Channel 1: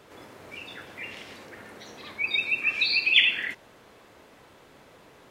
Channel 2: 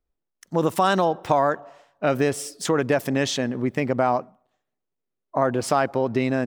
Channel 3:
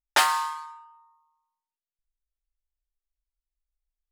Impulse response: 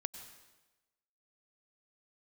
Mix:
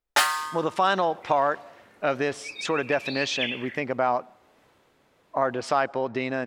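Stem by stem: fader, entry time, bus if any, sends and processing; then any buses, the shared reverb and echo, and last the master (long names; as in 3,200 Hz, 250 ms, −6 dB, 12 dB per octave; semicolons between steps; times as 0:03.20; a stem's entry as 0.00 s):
−3.5 dB, 0.25 s, no send, automatic ducking −7 dB, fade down 0.70 s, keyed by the second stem
−0.5 dB, 0.00 s, send −20 dB, low-pass filter 4,700 Hz 12 dB per octave; low-shelf EQ 370 Hz −12 dB
−1.0 dB, 0.00 s, no send, comb filter 7.1 ms, depth 58%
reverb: on, RT60 1.1 s, pre-delay 88 ms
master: no processing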